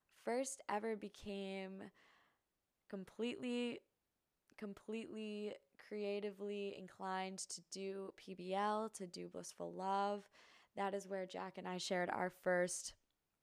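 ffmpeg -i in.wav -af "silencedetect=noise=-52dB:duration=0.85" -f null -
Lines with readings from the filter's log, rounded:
silence_start: 1.88
silence_end: 2.90 | silence_duration: 1.02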